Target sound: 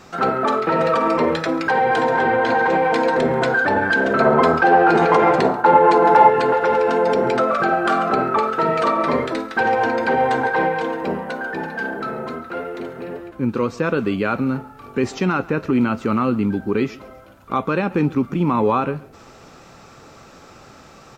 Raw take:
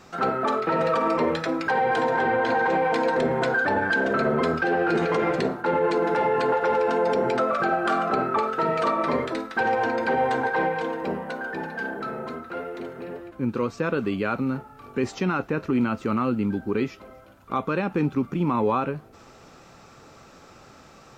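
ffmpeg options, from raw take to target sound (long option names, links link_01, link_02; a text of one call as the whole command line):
ffmpeg -i in.wav -filter_complex "[0:a]asettb=1/sr,asplit=3[link_01][link_02][link_03];[link_01]atrim=end=4.204[link_04];[link_02]atrim=start=4.2:end=6.3,asetpts=PTS-STARTPTS,afade=type=in:duration=0.004:curve=qsin,afade=type=out:start_time=2.096:duration=0.004:curve=qsin,equalizer=frequency=870:width_type=o:width=0.92:gain=10.5[link_05];[link_03]atrim=start=6.296[link_06];[link_04][link_05]acrossfade=duration=0.004:curve1=hsin:curve2=qsin[link_07];[link_07][link_06]acrossfade=duration=0.004:curve1=qsin:curve2=hsin,aecho=1:1:137:0.0841,volume=5dB" out.wav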